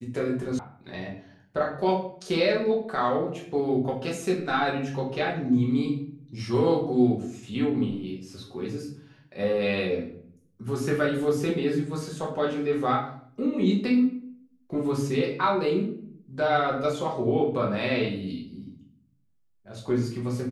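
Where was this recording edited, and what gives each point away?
0.59 sound cut off

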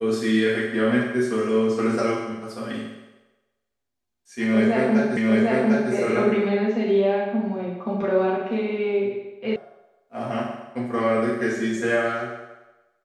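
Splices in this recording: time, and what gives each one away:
5.17 repeat of the last 0.75 s
9.56 sound cut off

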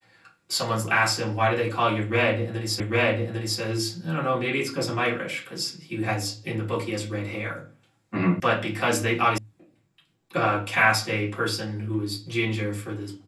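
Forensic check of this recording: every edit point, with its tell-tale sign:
2.8 repeat of the last 0.8 s
8.4 sound cut off
9.38 sound cut off

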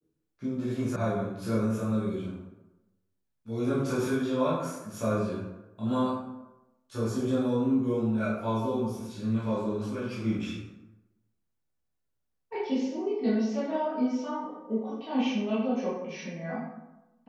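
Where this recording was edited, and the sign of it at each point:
0.96 sound cut off

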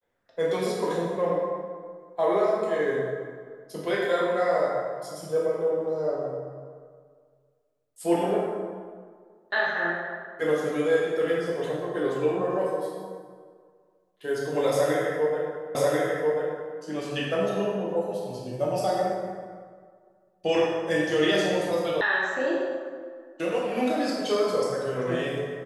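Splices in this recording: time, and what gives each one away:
15.75 repeat of the last 1.04 s
22.01 sound cut off

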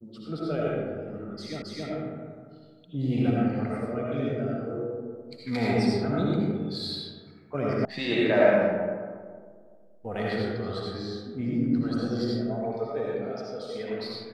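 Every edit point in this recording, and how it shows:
1.62 repeat of the last 0.27 s
7.85 sound cut off

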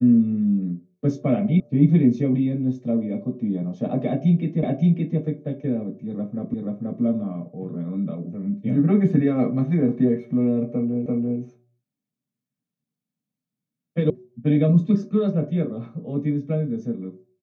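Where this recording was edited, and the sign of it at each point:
1.6 sound cut off
4.63 repeat of the last 0.57 s
6.54 repeat of the last 0.48 s
11.06 repeat of the last 0.34 s
14.1 sound cut off

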